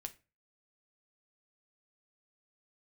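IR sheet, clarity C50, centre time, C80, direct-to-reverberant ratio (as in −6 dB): 18.5 dB, 4 ms, 24.5 dB, 5.5 dB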